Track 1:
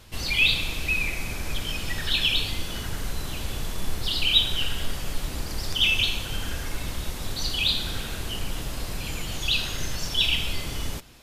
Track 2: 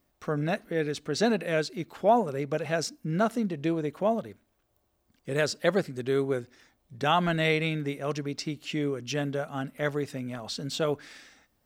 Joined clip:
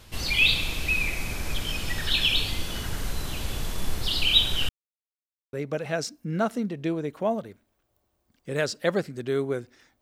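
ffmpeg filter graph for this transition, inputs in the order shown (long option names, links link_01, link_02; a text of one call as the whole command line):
ffmpeg -i cue0.wav -i cue1.wav -filter_complex "[0:a]apad=whole_dur=10.01,atrim=end=10.01,asplit=2[link_01][link_02];[link_01]atrim=end=4.69,asetpts=PTS-STARTPTS,afade=type=out:start_time=4.686:duration=0.004:curve=hsin[link_03];[link_02]atrim=start=4.69:end=5.53,asetpts=PTS-STARTPTS,volume=0[link_04];[1:a]atrim=start=2.33:end=6.81,asetpts=PTS-STARTPTS,afade=type=in:duration=0.004:curve=hsin[link_05];[link_03][link_04][link_05]concat=n=3:v=0:a=1" out.wav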